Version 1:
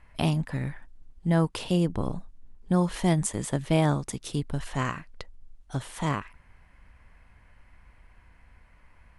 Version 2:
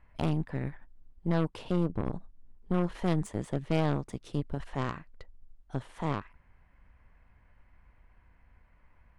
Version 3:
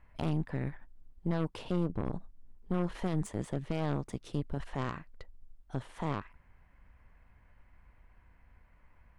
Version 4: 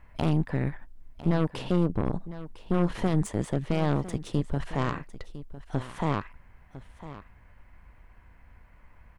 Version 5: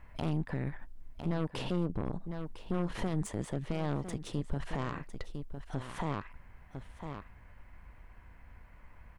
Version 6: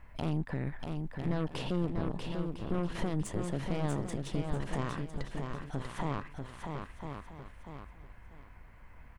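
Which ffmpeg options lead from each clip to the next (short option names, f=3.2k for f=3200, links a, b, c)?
-af "lowpass=f=1.8k:p=1,aeval=exprs='0.299*(cos(1*acos(clip(val(0)/0.299,-1,1)))-cos(1*PI/2))+0.0335*(cos(8*acos(clip(val(0)/0.299,-1,1)))-cos(8*PI/2))':c=same,volume=-5dB"
-af "alimiter=limit=-22dB:level=0:latency=1:release=29"
-af "aecho=1:1:1004:0.178,volume=7dB"
-af "alimiter=limit=-23dB:level=0:latency=1:release=180"
-af "aecho=1:1:641|1282|1923|2564:0.562|0.157|0.0441|0.0123"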